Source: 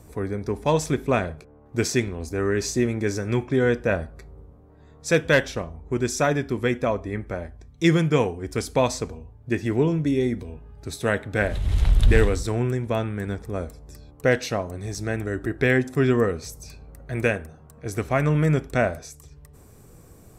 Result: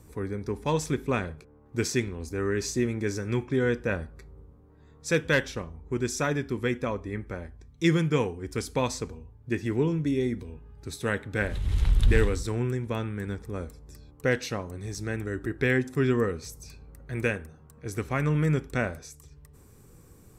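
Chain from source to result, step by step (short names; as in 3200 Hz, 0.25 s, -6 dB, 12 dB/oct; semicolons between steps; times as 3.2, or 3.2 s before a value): bell 660 Hz -10 dB 0.34 oct; gain -4 dB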